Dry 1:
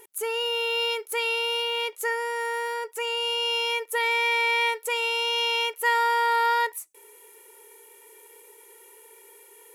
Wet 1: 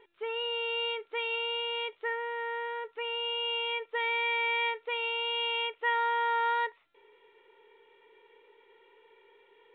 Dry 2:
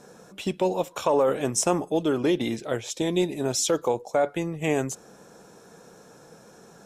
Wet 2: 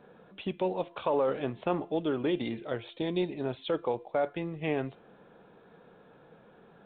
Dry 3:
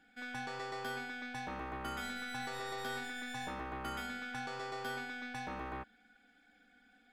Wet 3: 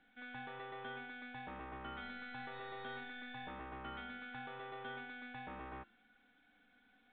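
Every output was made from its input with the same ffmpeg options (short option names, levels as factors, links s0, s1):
-af "bandreject=f=343.5:t=h:w=4,bandreject=f=687:t=h:w=4,bandreject=f=1030.5:t=h:w=4,bandreject=f=1374:t=h:w=4,bandreject=f=1717.5:t=h:w=4,bandreject=f=2061:t=h:w=4,bandreject=f=2404.5:t=h:w=4,bandreject=f=2748:t=h:w=4,bandreject=f=3091.5:t=h:w=4,volume=0.501" -ar 8000 -c:a pcm_mulaw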